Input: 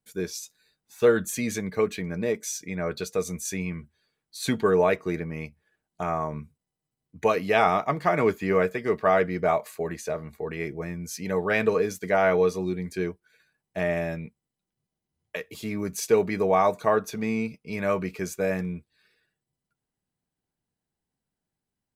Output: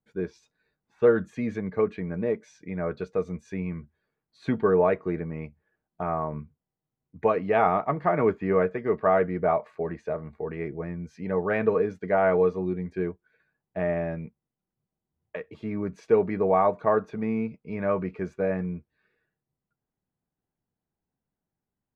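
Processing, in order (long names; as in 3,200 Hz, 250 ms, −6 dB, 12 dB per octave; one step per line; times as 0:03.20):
low-pass filter 1,500 Hz 12 dB per octave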